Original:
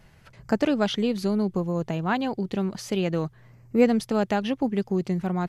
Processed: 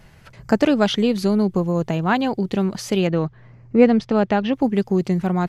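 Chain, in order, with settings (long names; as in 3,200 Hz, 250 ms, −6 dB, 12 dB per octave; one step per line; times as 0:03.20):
0:03.07–0:04.53: high-frequency loss of the air 160 metres
level +6 dB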